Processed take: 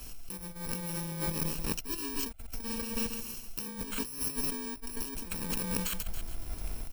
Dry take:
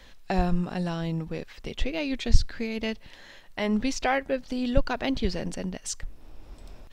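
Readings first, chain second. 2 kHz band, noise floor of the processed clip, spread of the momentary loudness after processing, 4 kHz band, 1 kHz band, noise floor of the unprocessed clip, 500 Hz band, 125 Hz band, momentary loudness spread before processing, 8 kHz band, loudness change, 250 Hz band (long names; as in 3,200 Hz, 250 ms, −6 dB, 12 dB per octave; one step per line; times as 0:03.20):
−9.5 dB, −44 dBFS, 9 LU, −4.5 dB, −11.5 dB, −50 dBFS, −12.5 dB, −9.0 dB, 11 LU, +3.0 dB, −5.5 dB, −10.0 dB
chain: samples in bit-reversed order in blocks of 64 samples
repeating echo 139 ms, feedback 40%, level −11 dB
compressor whose output falls as the input rises −36 dBFS, ratio −1
level −1 dB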